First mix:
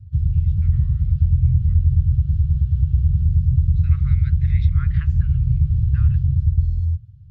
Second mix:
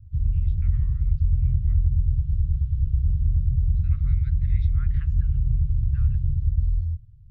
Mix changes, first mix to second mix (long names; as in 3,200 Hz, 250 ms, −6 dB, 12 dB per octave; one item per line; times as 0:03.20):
second voice −9.5 dB
background −9.0 dB
master: remove high-pass filter 76 Hz 12 dB per octave